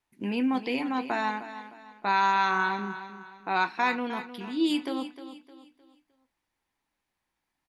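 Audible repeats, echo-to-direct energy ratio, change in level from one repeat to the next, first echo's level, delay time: 3, −12.0 dB, −8.5 dB, −12.5 dB, 307 ms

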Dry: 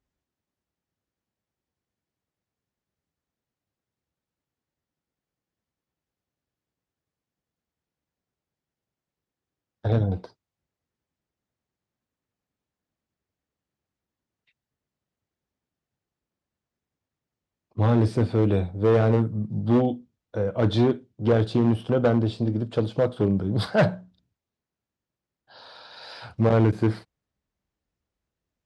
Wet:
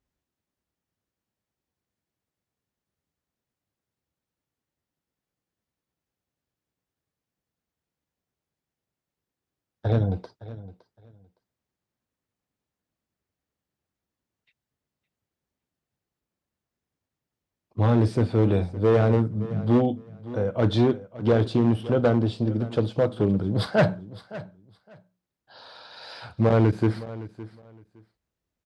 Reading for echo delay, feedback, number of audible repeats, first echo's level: 563 ms, 19%, 2, −17.0 dB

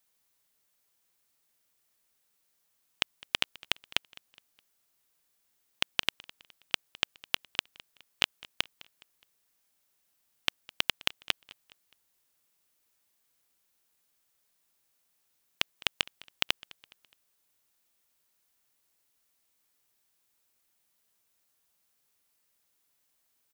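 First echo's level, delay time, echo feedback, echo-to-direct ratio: −22.0 dB, 208 ms, 42%, −21.0 dB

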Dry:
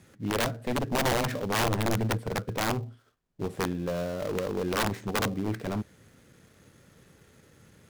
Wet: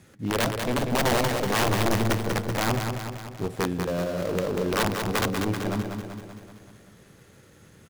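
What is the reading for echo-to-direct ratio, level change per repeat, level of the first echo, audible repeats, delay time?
−4.0 dB, −4.5 dB, −6.0 dB, 7, 191 ms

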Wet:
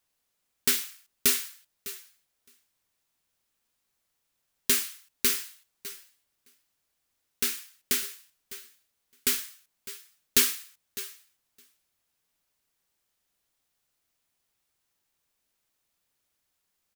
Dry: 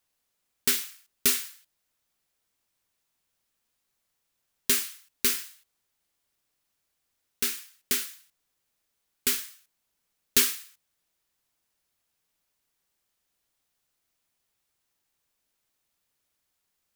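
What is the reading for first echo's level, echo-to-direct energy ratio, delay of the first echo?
−17.0 dB, −15.5 dB, 604 ms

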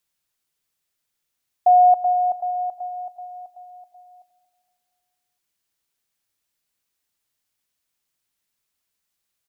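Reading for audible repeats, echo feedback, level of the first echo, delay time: 4, 53%, −17.0 dB, 232 ms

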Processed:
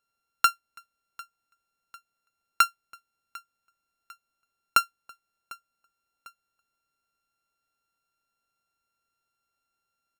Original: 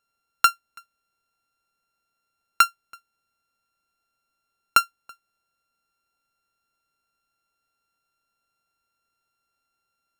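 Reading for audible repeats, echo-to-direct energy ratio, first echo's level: 2, −21.0 dB, −22.0 dB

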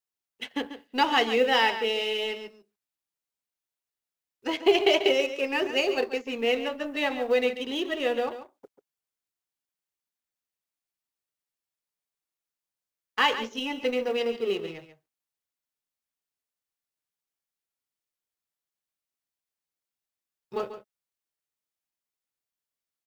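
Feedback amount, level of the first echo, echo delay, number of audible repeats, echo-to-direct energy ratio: repeats not evenly spaced, −11.5 dB, 140 ms, 1, −11.5 dB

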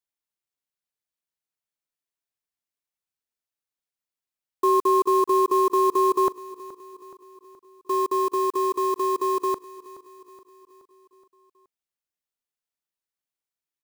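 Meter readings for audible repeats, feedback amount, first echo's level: 4, 56%, −17.5 dB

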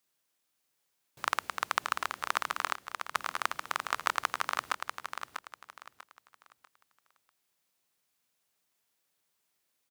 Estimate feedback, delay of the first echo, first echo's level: 29%, 643 ms, −7.0 dB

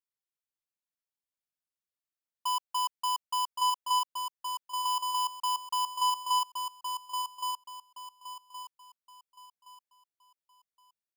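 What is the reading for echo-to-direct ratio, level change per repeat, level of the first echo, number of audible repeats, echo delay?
−4.5 dB, −10.0 dB, −5.0 dB, 4, 1,119 ms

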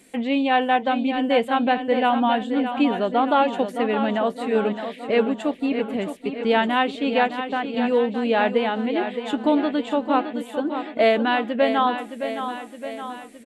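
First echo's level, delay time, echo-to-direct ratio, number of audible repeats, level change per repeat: −9.0 dB, 616 ms, −7.0 dB, 6, −4.5 dB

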